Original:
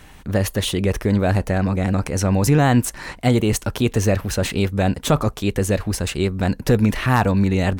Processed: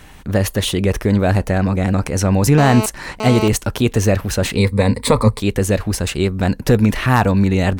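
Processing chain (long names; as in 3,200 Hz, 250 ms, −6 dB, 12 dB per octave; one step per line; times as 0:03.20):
0:02.58–0:03.48: phone interference −25 dBFS
0:04.57–0:05.40: EQ curve with evenly spaced ripples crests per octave 0.95, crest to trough 14 dB
level +3 dB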